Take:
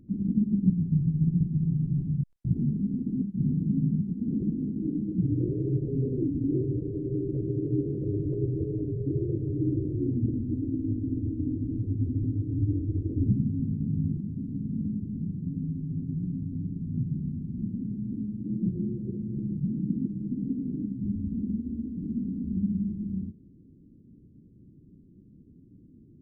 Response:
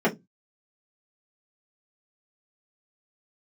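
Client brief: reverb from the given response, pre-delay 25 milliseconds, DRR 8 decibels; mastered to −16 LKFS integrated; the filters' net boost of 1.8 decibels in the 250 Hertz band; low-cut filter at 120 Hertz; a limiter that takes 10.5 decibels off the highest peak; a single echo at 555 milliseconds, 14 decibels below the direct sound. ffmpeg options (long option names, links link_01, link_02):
-filter_complex "[0:a]highpass=120,equalizer=frequency=250:width_type=o:gain=3,alimiter=limit=-21dB:level=0:latency=1,aecho=1:1:555:0.2,asplit=2[link_01][link_02];[1:a]atrim=start_sample=2205,adelay=25[link_03];[link_02][link_03]afir=irnorm=-1:irlink=0,volume=-23.5dB[link_04];[link_01][link_04]amix=inputs=2:normalize=0,volume=11.5dB"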